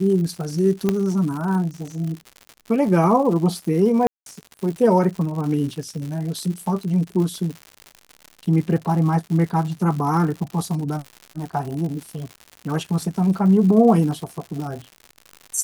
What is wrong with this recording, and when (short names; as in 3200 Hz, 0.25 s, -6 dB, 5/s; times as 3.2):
crackle 140/s -29 dBFS
0.89 pop -7 dBFS
4.07–4.26 gap 0.192 s